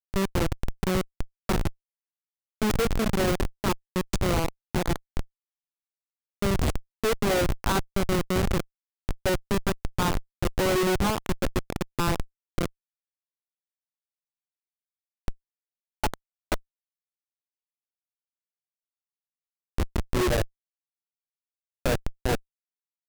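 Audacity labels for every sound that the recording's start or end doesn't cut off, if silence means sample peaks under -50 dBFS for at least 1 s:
6.420000	12.690000	sound
15.280000	16.600000	sound
19.780000	20.470000	sound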